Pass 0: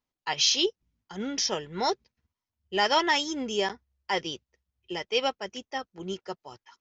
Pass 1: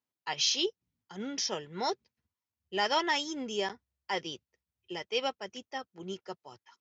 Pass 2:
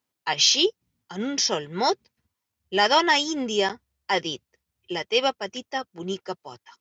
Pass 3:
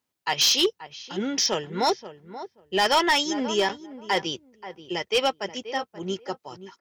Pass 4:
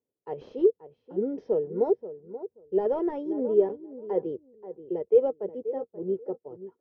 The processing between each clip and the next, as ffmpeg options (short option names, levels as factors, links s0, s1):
-af "highpass=f=81:w=0.5412,highpass=f=81:w=1.3066,volume=0.562"
-af "acontrast=82,volume=1.33"
-filter_complex "[0:a]asplit=2[s0][s1];[s1]adelay=531,lowpass=f=1400:p=1,volume=0.224,asplit=2[s2][s3];[s3]adelay=531,lowpass=f=1400:p=1,volume=0.17[s4];[s0][s2][s4]amix=inputs=3:normalize=0,asoftclip=type=hard:threshold=0.178"
-af "lowpass=f=460:t=q:w=5,volume=0.473"